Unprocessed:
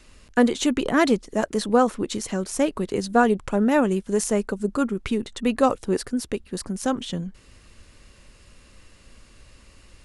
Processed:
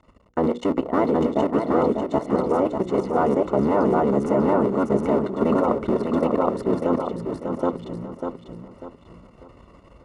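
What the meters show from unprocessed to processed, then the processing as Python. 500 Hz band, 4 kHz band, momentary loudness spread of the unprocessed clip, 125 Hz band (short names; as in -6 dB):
+3.5 dB, under -10 dB, 8 LU, +3.5 dB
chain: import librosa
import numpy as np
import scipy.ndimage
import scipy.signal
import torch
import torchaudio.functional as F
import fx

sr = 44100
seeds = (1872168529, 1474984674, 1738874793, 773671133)

p1 = fx.cycle_switch(x, sr, every=3, mode='muted')
p2 = p1 + 10.0 ** (-3.0 / 20.0) * np.pad(p1, (int(771 * sr / 1000.0), 0))[:len(p1)]
p3 = fx.rider(p2, sr, range_db=3, speed_s=2.0)
p4 = p2 + (p3 * librosa.db_to_amplitude(0.5))
p5 = scipy.signal.savgol_filter(p4, 65, 4, mode='constant')
p6 = fx.low_shelf(p5, sr, hz=500.0, db=-5.5)
p7 = fx.hum_notches(p6, sr, base_hz=60, count=9)
p8 = fx.level_steps(p7, sr, step_db=12)
p9 = scipy.signal.sosfilt(scipy.signal.butter(2, 45.0, 'highpass', fs=sr, output='sos'), p8)
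p10 = fx.low_shelf(p9, sr, hz=200.0, db=-3.5)
p11 = fx.notch(p10, sr, hz=780.0, q=12.0)
p12 = p11 + fx.echo_feedback(p11, sr, ms=595, feedback_pct=33, wet_db=-6, dry=0)
y = p12 * librosa.db_to_amplitude(5.5)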